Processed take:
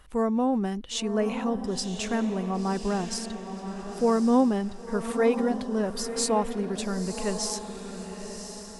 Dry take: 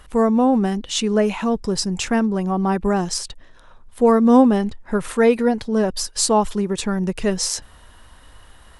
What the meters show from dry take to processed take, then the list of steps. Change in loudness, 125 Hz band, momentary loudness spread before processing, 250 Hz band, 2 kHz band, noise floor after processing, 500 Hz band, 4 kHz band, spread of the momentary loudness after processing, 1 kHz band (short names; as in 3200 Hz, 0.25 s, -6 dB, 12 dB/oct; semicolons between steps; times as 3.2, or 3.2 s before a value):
-8.0 dB, -8.0 dB, 9 LU, -8.0 dB, -8.0 dB, -41 dBFS, -7.5 dB, -8.0 dB, 13 LU, -8.0 dB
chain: diffused feedback echo 1.032 s, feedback 40%, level -8.5 dB; gain -8.5 dB